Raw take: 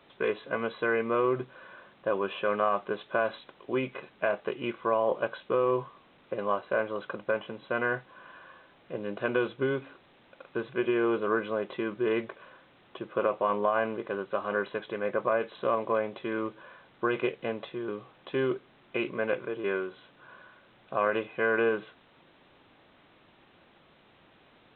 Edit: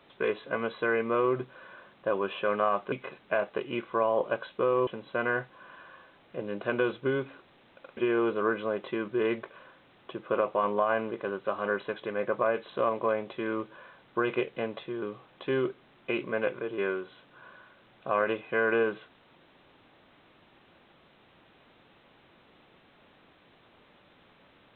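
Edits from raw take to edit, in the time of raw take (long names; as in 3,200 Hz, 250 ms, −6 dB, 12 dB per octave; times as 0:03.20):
0:02.92–0:03.83: remove
0:05.78–0:07.43: remove
0:10.53–0:10.83: remove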